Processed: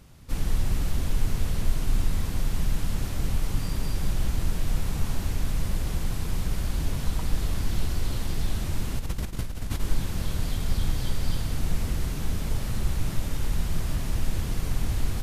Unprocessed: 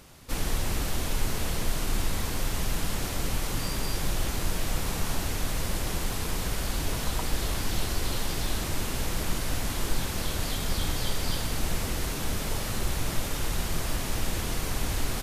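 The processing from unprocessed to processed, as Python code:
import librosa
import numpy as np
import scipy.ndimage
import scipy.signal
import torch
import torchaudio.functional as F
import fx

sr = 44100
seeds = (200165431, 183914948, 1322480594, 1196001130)

y = fx.over_compress(x, sr, threshold_db=-31.0, ratio=-0.5, at=(8.99, 9.8))
y = fx.bass_treble(y, sr, bass_db=10, treble_db=-1)
y = y + 10.0 ** (-10.0 / 20.0) * np.pad(y, (int(184 * sr / 1000.0), 0))[:len(y)]
y = y * 10.0 ** (-6.0 / 20.0)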